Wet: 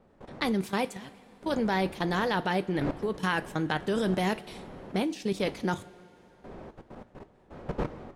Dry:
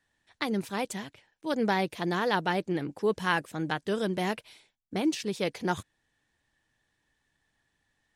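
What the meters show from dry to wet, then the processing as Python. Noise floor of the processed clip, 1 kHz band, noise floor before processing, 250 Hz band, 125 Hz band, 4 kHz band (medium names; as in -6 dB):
-60 dBFS, 0.0 dB, -78 dBFS, +1.5 dB, +3.0 dB, -0.5 dB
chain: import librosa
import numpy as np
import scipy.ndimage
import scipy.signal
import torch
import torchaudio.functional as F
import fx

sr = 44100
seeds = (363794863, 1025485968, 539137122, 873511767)

y = fx.dmg_wind(x, sr, seeds[0], corner_hz=540.0, level_db=-44.0)
y = fx.level_steps(y, sr, step_db=17)
y = fx.rev_double_slope(y, sr, seeds[1], early_s=0.25, late_s=3.1, knee_db=-18, drr_db=11.0)
y = y * librosa.db_to_amplitude(6.5)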